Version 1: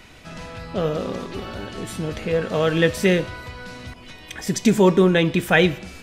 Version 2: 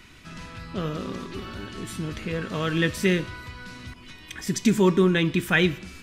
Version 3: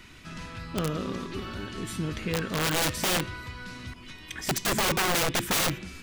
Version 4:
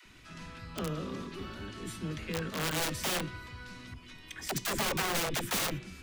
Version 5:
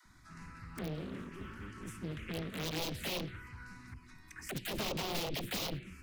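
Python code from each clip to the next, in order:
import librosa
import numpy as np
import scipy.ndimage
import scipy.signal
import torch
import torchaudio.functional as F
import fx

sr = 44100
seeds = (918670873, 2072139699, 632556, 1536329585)

y1 = fx.band_shelf(x, sr, hz=620.0, db=-8.5, octaves=1.1)
y1 = y1 * 10.0 ** (-3.0 / 20.0)
y2 = (np.mod(10.0 ** (20.0 / 20.0) * y1 + 1.0, 2.0) - 1.0) / 10.0 ** (20.0 / 20.0)
y3 = fx.dispersion(y2, sr, late='lows', ms=58.0, hz=340.0)
y3 = y3 * 10.0 ** (-6.0 / 20.0)
y4 = fx.env_phaser(y3, sr, low_hz=450.0, high_hz=1700.0, full_db=-27.5)
y4 = fx.doppler_dist(y4, sr, depth_ms=0.77)
y4 = y4 * 10.0 ** (-2.5 / 20.0)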